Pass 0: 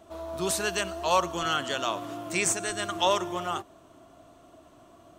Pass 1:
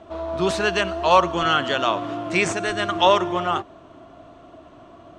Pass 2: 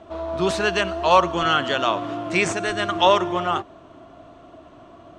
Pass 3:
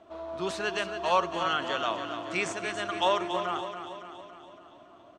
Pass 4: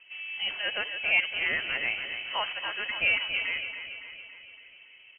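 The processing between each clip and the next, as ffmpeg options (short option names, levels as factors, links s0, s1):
-af "lowpass=3500,volume=2.66"
-af anull
-af "lowshelf=f=140:g=-11,aecho=1:1:281|562|843|1124|1405|1686|1967:0.355|0.199|0.111|0.0623|0.0349|0.0195|0.0109,volume=0.355"
-af "lowpass=f=2800:t=q:w=0.5098,lowpass=f=2800:t=q:w=0.6013,lowpass=f=2800:t=q:w=0.9,lowpass=f=2800:t=q:w=2.563,afreqshift=-3300"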